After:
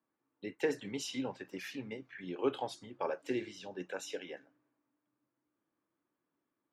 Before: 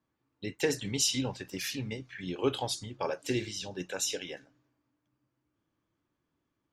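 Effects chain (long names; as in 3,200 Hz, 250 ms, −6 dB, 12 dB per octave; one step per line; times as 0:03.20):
three-way crossover with the lows and the highs turned down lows −18 dB, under 190 Hz, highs −14 dB, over 2,500 Hz
level −2.5 dB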